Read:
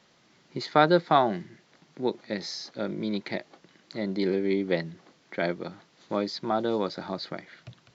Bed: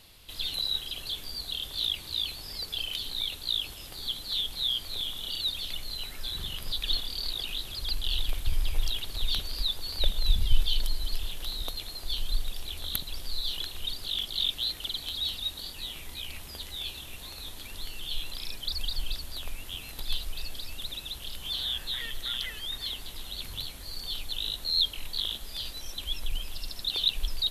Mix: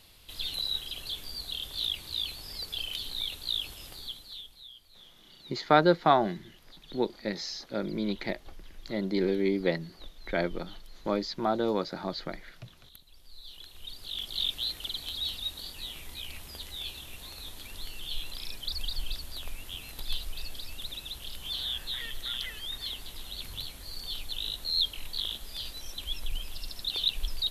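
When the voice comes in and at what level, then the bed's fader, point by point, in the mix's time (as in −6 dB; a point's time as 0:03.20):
4.95 s, −1.0 dB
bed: 0:03.89 −2 dB
0:04.72 −21.5 dB
0:13.05 −21.5 dB
0:14.37 −2 dB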